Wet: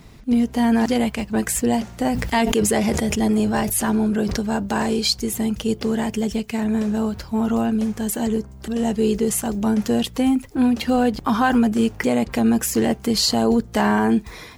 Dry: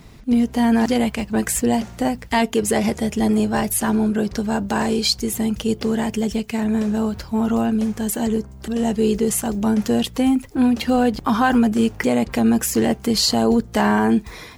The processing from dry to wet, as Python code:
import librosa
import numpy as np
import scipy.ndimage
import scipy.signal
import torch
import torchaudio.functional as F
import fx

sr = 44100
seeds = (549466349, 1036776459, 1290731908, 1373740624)

y = fx.sustainer(x, sr, db_per_s=39.0, at=(2.04, 4.4))
y = y * librosa.db_to_amplitude(-1.0)